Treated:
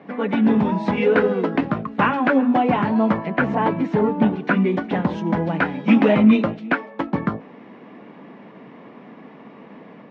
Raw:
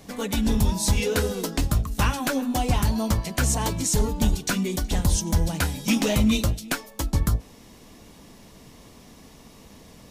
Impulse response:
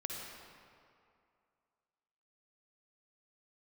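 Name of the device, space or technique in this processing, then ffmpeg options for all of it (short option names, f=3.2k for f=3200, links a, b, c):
action camera in a waterproof case: -filter_complex "[0:a]asettb=1/sr,asplit=3[a][b][c];[a]atrim=end=3.174[d];[b]atrim=start=3.17:end=4.57,asetpts=PTS-STARTPTS,afade=t=in:d=0.004:c=qsin,afade=t=out:st=1.396:d=0.004:c=qsin,aemphasis=mode=reproduction:type=50fm[e];[c]atrim=start=4.566[f];[d][e]acrossfade=d=0.004:c1=hsin:c2=qsin[g];[g][f]acrossfade=d=0.004:c1=qsin:c2=hsin,highpass=f=180:w=0.5412,highpass=f=180:w=1.3066,lowpass=f=2.2k:w=0.5412,lowpass=f=2.2k:w=1.3066,dynaudnorm=f=200:g=3:m=3dB,volume=6dB" -ar 22050 -c:a aac -b:a 96k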